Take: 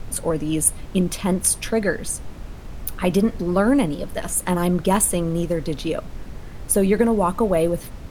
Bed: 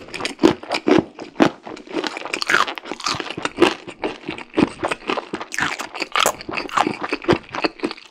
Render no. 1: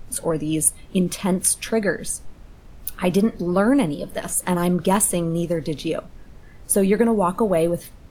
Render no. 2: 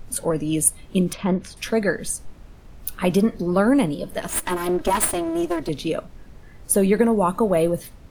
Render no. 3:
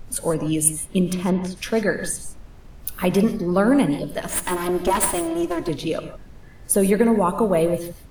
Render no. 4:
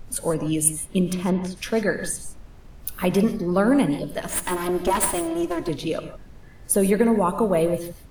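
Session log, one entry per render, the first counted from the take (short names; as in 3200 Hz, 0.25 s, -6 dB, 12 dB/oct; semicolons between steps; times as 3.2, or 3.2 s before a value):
noise print and reduce 9 dB
1.13–1.57 air absorption 230 m; 4.28–5.69 minimum comb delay 3.1 ms
non-linear reverb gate 0.18 s rising, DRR 9.5 dB
gain -1.5 dB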